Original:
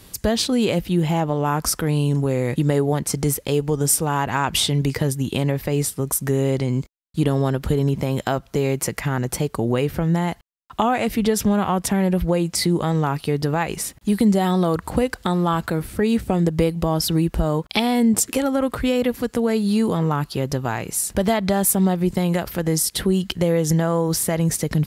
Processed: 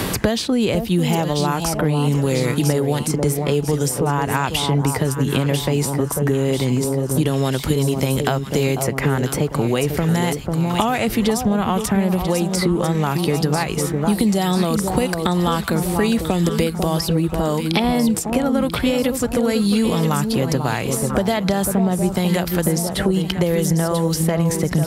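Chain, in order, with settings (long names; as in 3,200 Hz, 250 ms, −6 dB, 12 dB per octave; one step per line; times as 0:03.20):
delay that swaps between a low-pass and a high-pass 495 ms, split 1,100 Hz, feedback 64%, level −7 dB
multiband upward and downward compressor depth 100%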